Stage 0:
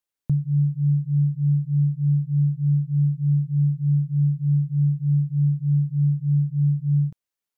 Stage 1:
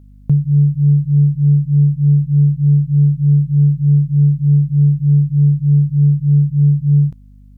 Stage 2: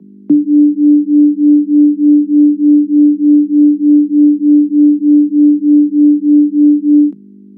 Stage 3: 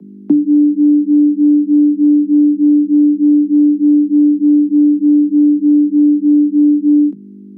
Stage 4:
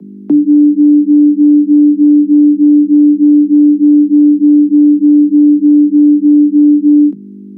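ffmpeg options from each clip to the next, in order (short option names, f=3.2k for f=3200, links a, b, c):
-af "acontrast=69,aeval=exprs='val(0)+0.00708*(sin(2*PI*50*n/s)+sin(2*PI*2*50*n/s)/2+sin(2*PI*3*50*n/s)/3+sin(2*PI*4*50*n/s)/4+sin(2*PI*5*50*n/s)/5)':c=same,volume=2.5dB"
-af "bass=f=250:g=7,treble=f=4k:g=-8,afreqshift=150,volume=-2.5dB"
-filter_complex "[0:a]acrossover=split=200|530[a][b][c];[a]acompressor=threshold=-24dB:ratio=4[d];[b]acompressor=threshold=-13dB:ratio=4[e];[c]acompressor=threshold=-40dB:ratio=4[f];[d][e][f]amix=inputs=3:normalize=0,volume=2.5dB"
-af "alimiter=level_in=5.5dB:limit=-1dB:release=50:level=0:latency=1,volume=-1dB"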